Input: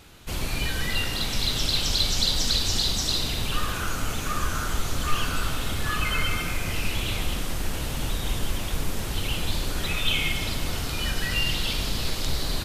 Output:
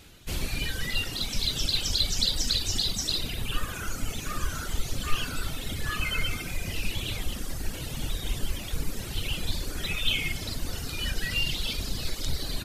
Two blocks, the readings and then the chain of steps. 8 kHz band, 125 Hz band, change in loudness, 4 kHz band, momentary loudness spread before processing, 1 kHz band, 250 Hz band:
-3.0 dB, -4.0 dB, -3.5 dB, -3.0 dB, 8 LU, -8.0 dB, -4.5 dB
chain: reverb removal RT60 1.9 s; peaking EQ 1 kHz -5.5 dB 1.3 oct; de-hum 55.41 Hz, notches 27

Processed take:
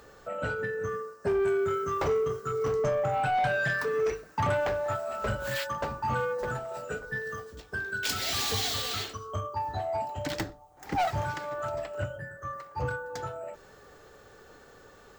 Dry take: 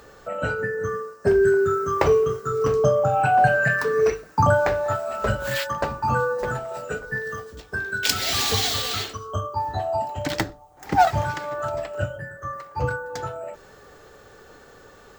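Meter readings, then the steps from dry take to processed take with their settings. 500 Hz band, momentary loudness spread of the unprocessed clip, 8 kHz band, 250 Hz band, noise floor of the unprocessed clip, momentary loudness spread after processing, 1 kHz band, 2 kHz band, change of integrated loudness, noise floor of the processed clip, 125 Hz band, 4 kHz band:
-7.5 dB, 13 LU, -7.0 dB, -8.0 dB, -49 dBFS, 11 LU, -8.0 dB, -7.0 dB, -7.5 dB, -54 dBFS, -8.0 dB, -6.5 dB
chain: saturation -17.5 dBFS, distortion -12 dB; trim -5 dB

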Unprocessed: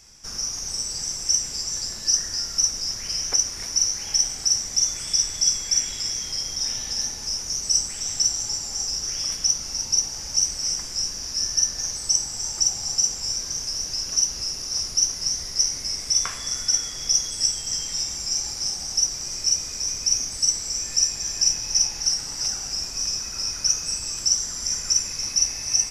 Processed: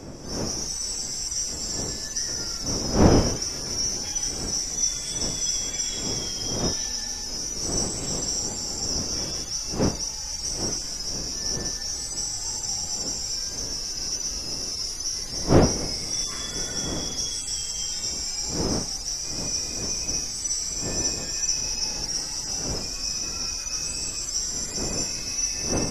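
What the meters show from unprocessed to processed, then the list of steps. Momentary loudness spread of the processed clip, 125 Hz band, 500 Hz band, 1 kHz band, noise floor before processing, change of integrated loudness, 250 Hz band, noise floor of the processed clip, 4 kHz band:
4 LU, +12.5 dB, +16.5 dB, +8.0 dB, -34 dBFS, -3.5 dB, +17.5 dB, -33 dBFS, -4.0 dB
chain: harmonic-percussive separation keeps harmonic; wind noise 390 Hz -35 dBFS; trim +3.5 dB

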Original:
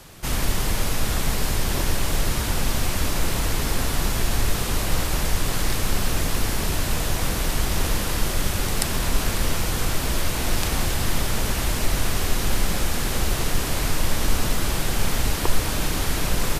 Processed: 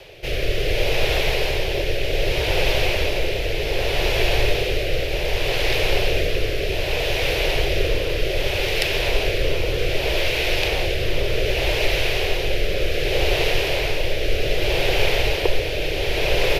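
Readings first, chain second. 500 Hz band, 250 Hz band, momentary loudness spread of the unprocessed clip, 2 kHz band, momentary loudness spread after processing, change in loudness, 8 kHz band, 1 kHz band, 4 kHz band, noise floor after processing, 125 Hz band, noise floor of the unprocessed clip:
+10.0 dB, -2.0 dB, 1 LU, +6.5 dB, 4 LU, +3.0 dB, -9.0 dB, -0.5 dB, +5.5 dB, -24 dBFS, -1.0 dB, -26 dBFS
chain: FFT filter 130 Hz 0 dB, 230 Hz -15 dB, 390 Hz +11 dB, 570 Hz +13 dB, 1.2 kHz -6 dB, 2.5 kHz +13 dB, 5.4 kHz 0 dB, 8 kHz -13 dB, 13 kHz -6 dB; rotary cabinet horn 0.65 Hz; trim +1 dB

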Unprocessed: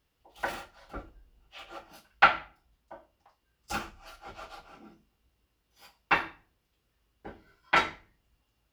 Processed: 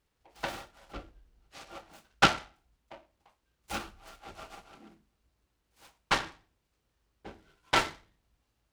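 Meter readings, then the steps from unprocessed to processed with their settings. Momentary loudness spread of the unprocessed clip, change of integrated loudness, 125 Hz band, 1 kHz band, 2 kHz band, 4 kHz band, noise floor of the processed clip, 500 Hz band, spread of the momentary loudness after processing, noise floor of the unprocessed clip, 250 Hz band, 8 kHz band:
23 LU, -2.0 dB, +5.5 dB, -3.0 dB, -4.0 dB, +4.0 dB, -79 dBFS, +0.5 dB, 23 LU, -77 dBFS, +3.5 dB, +7.5 dB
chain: delay time shaken by noise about 1.4 kHz, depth 0.076 ms; trim -2 dB

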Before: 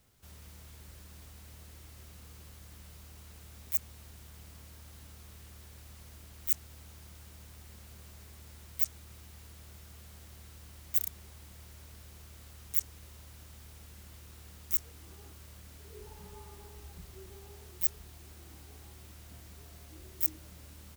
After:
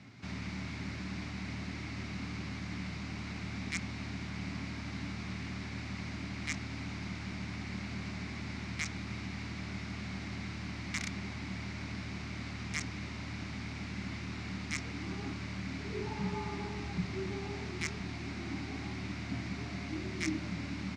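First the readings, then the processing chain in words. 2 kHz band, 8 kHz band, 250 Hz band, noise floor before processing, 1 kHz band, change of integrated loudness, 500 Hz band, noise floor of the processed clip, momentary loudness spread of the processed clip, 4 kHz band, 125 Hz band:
+18.0 dB, -0.5 dB, +20.5 dB, -53 dBFS, +13.5 dB, -8.0 dB, +11.5 dB, -42 dBFS, 4 LU, +10.5 dB, +11.0 dB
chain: cabinet simulation 120–5000 Hz, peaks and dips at 120 Hz +8 dB, 190 Hz +8 dB, 270 Hz +10 dB, 490 Hz -10 dB, 2.2 kHz +9 dB, 3.2 kHz -6 dB; trim +13.5 dB

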